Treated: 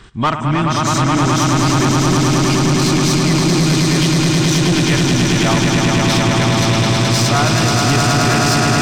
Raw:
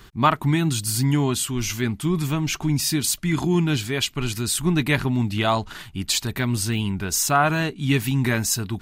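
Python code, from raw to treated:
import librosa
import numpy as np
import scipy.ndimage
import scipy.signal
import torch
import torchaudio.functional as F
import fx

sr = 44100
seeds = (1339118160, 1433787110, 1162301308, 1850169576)

y = fx.freq_compress(x, sr, knee_hz=2900.0, ratio=1.5)
y = fx.echo_swell(y, sr, ms=106, loudest=8, wet_db=-4.5)
y = 10.0 ** (-15.0 / 20.0) * np.tanh(y / 10.0 ** (-15.0 / 20.0))
y = y * 10.0 ** (5.5 / 20.0)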